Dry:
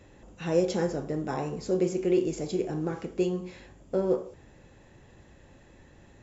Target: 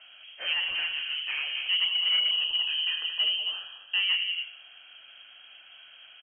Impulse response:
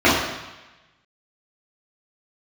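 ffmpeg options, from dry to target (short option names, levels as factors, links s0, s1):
-filter_complex "[0:a]equalizer=f=850:t=o:w=2.5:g=6.5,aecho=1:1:78.72|192.4|271.1:0.282|0.316|0.251,asoftclip=type=tanh:threshold=0.0841,lowpass=f=2800:t=q:w=0.5098,lowpass=f=2800:t=q:w=0.6013,lowpass=f=2800:t=q:w=0.9,lowpass=f=2800:t=q:w=2.563,afreqshift=-3300,asettb=1/sr,asplit=3[s0][s1][s2];[s0]atrim=end=0.534[s3];[s1]atrim=start=0.53:end=1.55,asetpts=PTS-STARTPTS,afade=t=in:d=0.004:c=qsin,afade=t=out:st=1.016:d=0.004:c=qsin,acrossover=split=2600[s4][s5];[s5]acompressor=threshold=0.0126:ratio=4:attack=1:release=60[s6];[s4][s6]amix=inputs=2:normalize=0[s7];[s2]atrim=start=1.546[s8];[s3][s7]acrossfade=d=0.004:c1=hsin:c2=qsin[s9];[s9][s8]acrossfade=d=0.004:c1=qsin:c2=hsin,asettb=1/sr,asplit=3[s10][s11][s12];[s10]atrim=end=2.314[s13];[s11]atrim=start=2.31:end=4,asetpts=PTS-STARTPTS,afade=t=in:d=0.004:c=qsin,afade=t=out:st=1.686:d=0.004:c=qsin,asuperstop=centerf=2200:order=8:qfactor=6.1[s14];[s12]atrim=start=3.996[s15];[s13][s14]acrossfade=d=0.004:c1=hsin:c2=qsin[s16];[s16][s15]acrossfade=d=0.004:c1=qsin:c2=hsin"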